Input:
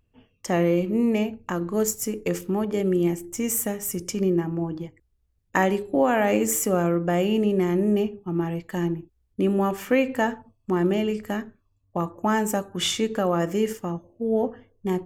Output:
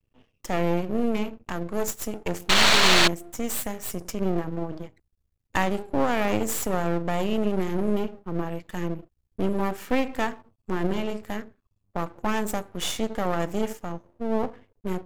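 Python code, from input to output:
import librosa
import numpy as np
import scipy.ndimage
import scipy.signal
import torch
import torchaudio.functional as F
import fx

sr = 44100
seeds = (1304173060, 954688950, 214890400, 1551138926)

y = fx.spec_paint(x, sr, seeds[0], shape='noise', start_s=2.49, length_s=0.59, low_hz=530.0, high_hz=4600.0, level_db=-14.0)
y = np.maximum(y, 0.0)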